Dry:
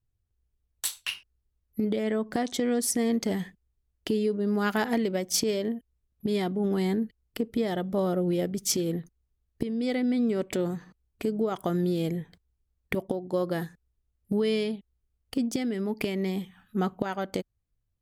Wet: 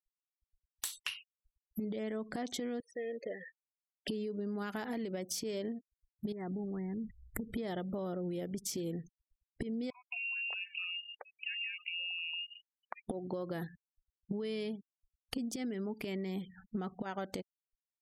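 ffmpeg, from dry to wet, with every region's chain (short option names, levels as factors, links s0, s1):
-filter_complex "[0:a]asettb=1/sr,asplit=3[s0][s1][s2];[s0]atrim=end=2.804[s3];[s1]atrim=start=2.8:end=4.08,asetpts=PTS-STARTPTS,afade=t=in:d=0.004:c=qsin,afade=t=out:st=1.276:d=0.004:c=qsin,asplit=3[s4][s5][s6];[s4]bandpass=f=530:t=q:w=8,volume=1[s7];[s5]bandpass=f=1840:t=q:w=8,volume=0.501[s8];[s6]bandpass=f=2480:t=q:w=8,volume=0.355[s9];[s7][s8][s9]amix=inputs=3:normalize=0,lowshelf=f=240:g=-6.5[s10];[s2]atrim=start=4.076[s11];[s3][s10]acrossfade=d=0.004:c1=hsin:c2=qsin[s12];[s12][s11]acrossfade=d=0.004:c1=qsin:c2=hsin,asettb=1/sr,asplit=3[s13][s14][s15];[s13]atrim=end=6.324[s16];[s14]atrim=start=6.32:end=7.53,asetpts=PTS-STARTPTS,afade=t=in:d=0.004:c=qsin,afade=t=out:st=1.206:d=0.004:c=qsin,asubboost=boost=11.5:cutoff=180,acompressor=threshold=0.0251:ratio=16:attack=3.2:release=140:knee=1:detection=peak,asuperstop=centerf=3600:order=12:qfactor=0.92[s17];[s15]atrim=start=7.526[s18];[s16][s17]acrossfade=d=0.004:c1=hsin:c2=qsin[s19];[s19][s18]acrossfade=d=0.004:c1=qsin:c2=hsin,asettb=1/sr,asplit=3[s20][s21][s22];[s20]atrim=end=9.904[s23];[s21]atrim=start=9.9:end=13.08,asetpts=PTS-STARTPTS,afade=t=in:d=0.004:c=qsin,afade=t=out:st=3.176:d=0.004:c=qsin,acompressor=threshold=0.00447:ratio=2.5:attack=3.2:release=140:knee=1:detection=peak,acrossover=split=790[s24][s25];[s24]adelay=220[s26];[s26][s25]amix=inputs=2:normalize=0,atrim=end_sample=140238,lowpass=f=2600:t=q:w=0.5098,lowpass=f=2600:t=q:w=0.6013,lowpass=f=2600:t=q:w=0.9,lowpass=f=2600:t=q:w=2.563,afreqshift=-3000[s27];[s22]atrim=start=13.076[s28];[s23][s27]acrossfade=d=0.004:c1=hsin:c2=qsin[s29];[s29][s28]acrossfade=d=0.004:c1=qsin:c2=hsin,afftfilt=real='re*gte(hypot(re,im),0.00398)':imag='im*gte(hypot(re,im),0.00398)':win_size=1024:overlap=0.75,alimiter=limit=0.075:level=0:latency=1:release=107,acompressor=threshold=0.00794:ratio=8,volume=2"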